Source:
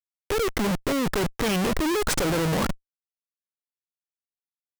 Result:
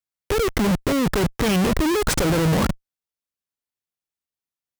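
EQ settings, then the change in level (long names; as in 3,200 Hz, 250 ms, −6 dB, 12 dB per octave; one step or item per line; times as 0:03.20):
high-pass filter 48 Hz 6 dB per octave
low-shelf EQ 160 Hz +9 dB
+2.5 dB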